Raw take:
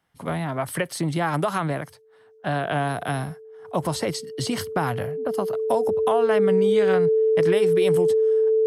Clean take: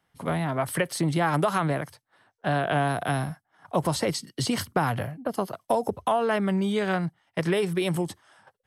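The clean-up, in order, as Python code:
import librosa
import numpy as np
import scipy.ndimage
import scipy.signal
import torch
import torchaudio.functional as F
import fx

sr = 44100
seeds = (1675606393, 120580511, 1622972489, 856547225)

y = fx.notch(x, sr, hz=440.0, q=30.0)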